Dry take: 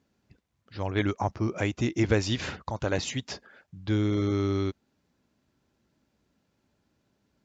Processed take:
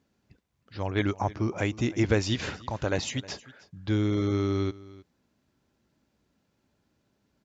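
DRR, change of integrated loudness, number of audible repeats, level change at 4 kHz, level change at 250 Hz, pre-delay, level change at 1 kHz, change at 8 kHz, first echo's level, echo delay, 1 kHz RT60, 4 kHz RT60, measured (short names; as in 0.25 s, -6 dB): none, 0.0 dB, 1, 0.0 dB, 0.0 dB, none, 0.0 dB, n/a, -20.0 dB, 0.313 s, none, none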